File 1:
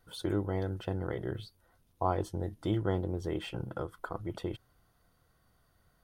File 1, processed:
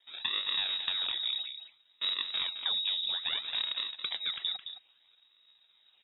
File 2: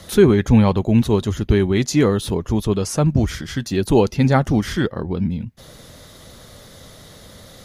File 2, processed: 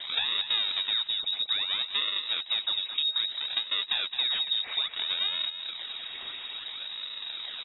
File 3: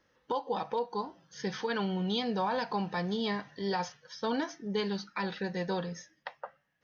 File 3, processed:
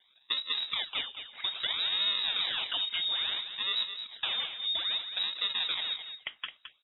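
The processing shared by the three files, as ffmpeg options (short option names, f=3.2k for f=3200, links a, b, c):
-filter_complex "[0:a]aresample=11025,asoftclip=type=tanh:threshold=-10.5dB,aresample=44100,highpass=f=100:w=0.5412,highpass=f=100:w=1.3066,acompressor=threshold=-34dB:ratio=6,highshelf=f=2.4k:g=-6,acrusher=samples=32:mix=1:aa=0.000001:lfo=1:lforange=51.2:lforate=0.6,equalizer=f=520:t=o:w=2.4:g=-6,asplit=2[a][b];[b]adelay=215.7,volume=-9dB,highshelf=f=4k:g=-4.85[c];[a][c]amix=inputs=2:normalize=0,lowpass=f=3.3k:t=q:w=0.5098,lowpass=f=3.3k:t=q:w=0.6013,lowpass=f=3.3k:t=q:w=0.9,lowpass=f=3.3k:t=q:w=2.563,afreqshift=-3900,volume=9dB"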